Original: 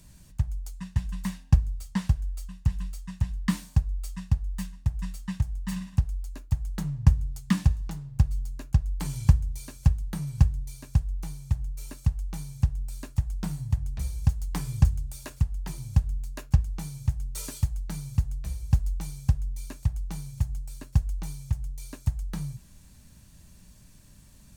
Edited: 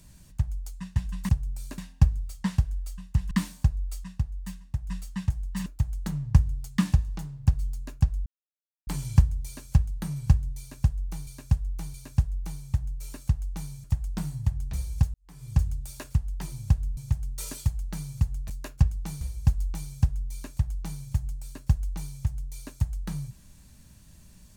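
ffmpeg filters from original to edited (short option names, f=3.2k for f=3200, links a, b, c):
-filter_complex "[0:a]asplit=15[a][b][c][d][e][f][g][h][i][j][k][l][m][n][o];[a]atrim=end=1.292[p];[b]atrim=start=12.608:end=13.102[q];[c]atrim=start=1.288:end=2.822[r];[d]atrim=start=3.428:end=4.162[s];[e]atrim=start=4.158:end=5.012,asetpts=PTS-STARTPTS,volume=-4dB[t];[f]atrim=start=5.008:end=5.782[u];[g]atrim=start=6.378:end=8.98,asetpts=PTS-STARTPTS,afade=t=out:st=2.598:d=0.004:c=hsin,apad=pad_dur=0.61[v];[h]atrim=start=8.98:end=11.382,asetpts=PTS-STARTPTS,afade=t=in:d=0.004:c=hsin[w];[i]atrim=start=10.708:end=11.382[x];[j]atrim=start=10.708:end=12.612[y];[k]atrim=start=13.098:end=14.4,asetpts=PTS-STARTPTS,afade=t=out:st=1.298:d=0.004:c=hsin[z];[l]atrim=start=14.4:end=16.232,asetpts=PTS-STARTPTS,afade=t=in:d=0.52:c=qua[aa];[m]atrim=start=16.938:end=18.472[ab];[n]atrim=start=16.228:end=16.942[ac];[o]atrim=start=18.468[ad];[p][q]acrossfade=d=0.004:c1=hsin:c2=hsin[ae];[ae][r]acrossfade=d=0.004:c1=hsin:c2=hsin[af];[af][s]acrossfade=d=0.004:c1=hsin:c2=hsin[ag];[ag][t]acrossfade=d=0.004:c1=hsin:c2=hsin[ah];[ah][u]acrossfade=d=0.004:c1=hsin:c2=hsin[ai];[v][w]concat=n=2:v=0:a=1[aj];[ai][aj]acrossfade=d=0.004:c1=hsin:c2=hsin[ak];[ak][x]acrossfade=d=0.004:c1=hsin:c2=hsin[al];[al][y]acrossfade=d=0.004:c1=hsin:c2=hsin[am];[z][aa]concat=n=2:v=0:a=1[an];[am][an]acrossfade=d=0.004:c1=hsin:c2=hsin[ao];[ao][ab]acrossfade=d=0.004:c1=hsin:c2=hsin[ap];[ap][ac]acrossfade=d=0.004:c1=hsin:c2=hsin[aq];[aq][ad]acrossfade=d=0.004:c1=hsin:c2=hsin"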